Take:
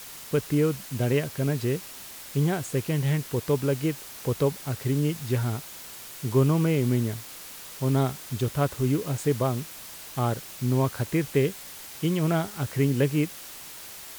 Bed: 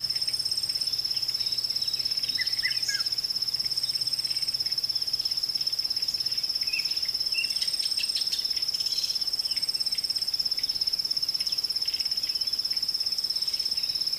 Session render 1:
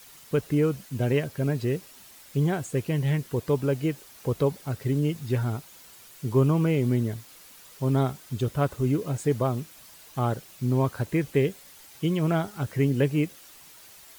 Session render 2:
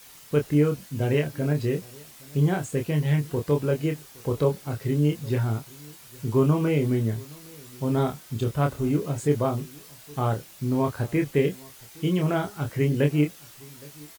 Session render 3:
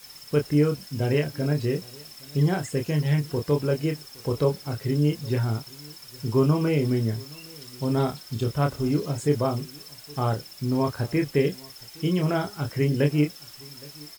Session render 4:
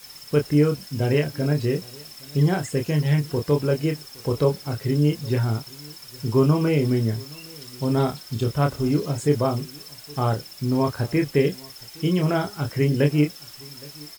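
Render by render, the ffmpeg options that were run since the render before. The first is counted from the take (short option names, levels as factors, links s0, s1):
-af "afftdn=nr=9:nf=-42"
-filter_complex "[0:a]asplit=2[s0][s1];[s1]adelay=27,volume=0.596[s2];[s0][s2]amix=inputs=2:normalize=0,asplit=2[s3][s4];[s4]adelay=816.3,volume=0.0631,highshelf=f=4000:g=-18.4[s5];[s3][s5]amix=inputs=2:normalize=0"
-filter_complex "[1:a]volume=0.112[s0];[0:a][s0]amix=inputs=2:normalize=0"
-af "volume=1.33"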